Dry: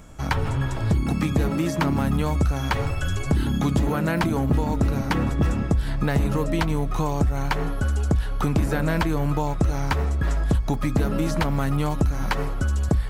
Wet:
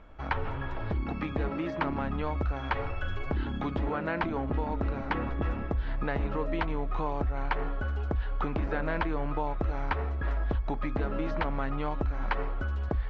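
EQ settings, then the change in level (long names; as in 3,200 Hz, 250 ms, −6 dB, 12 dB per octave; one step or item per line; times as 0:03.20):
low-pass filter 3,200 Hz 12 dB per octave
high-frequency loss of the air 190 metres
parametric band 140 Hz −12.5 dB 1.8 octaves
−3.0 dB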